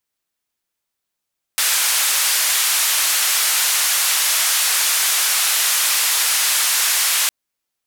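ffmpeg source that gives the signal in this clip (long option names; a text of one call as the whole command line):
ffmpeg -f lavfi -i "anoisesrc=color=white:duration=5.71:sample_rate=44100:seed=1,highpass=frequency=1100,lowpass=frequency=13000,volume=-10dB" out.wav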